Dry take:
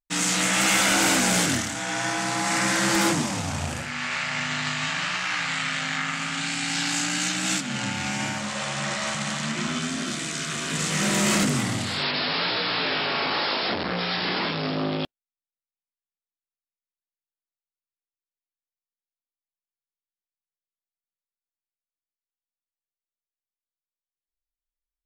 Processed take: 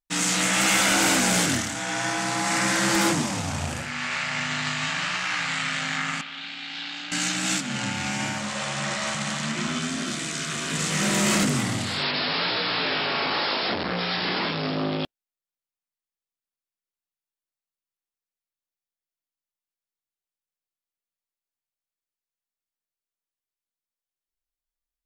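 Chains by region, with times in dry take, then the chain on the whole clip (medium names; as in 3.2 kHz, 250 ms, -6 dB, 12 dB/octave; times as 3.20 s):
6.21–7.12 s: companding laws mixed up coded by A + four-pole ladder low-pass 4.2 kHz, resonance 50% + peaking EQ 130 Hz -11.5 dB 1 oct
whole clip: none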